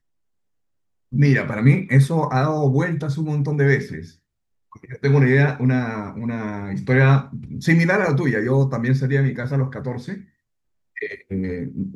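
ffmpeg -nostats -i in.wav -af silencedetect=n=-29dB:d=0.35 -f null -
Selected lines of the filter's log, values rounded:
silence_start: 0.00
silence_end: 1.13 | silence_duration: 1.13
silence_start: 4.05
silence_end: 4.84 | silence_duration: 0.79
silence_start: 10.17
silence_end: 10.97 | silence_duration: 0.80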